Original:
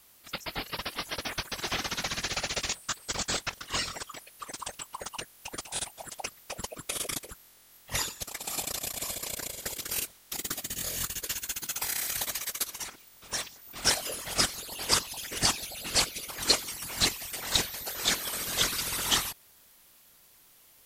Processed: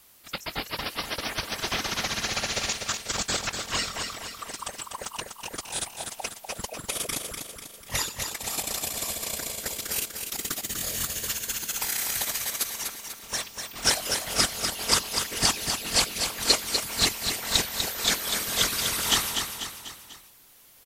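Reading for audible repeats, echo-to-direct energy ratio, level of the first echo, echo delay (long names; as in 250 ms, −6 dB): 4, −4.5 dB, −6.0 dB, 246 ms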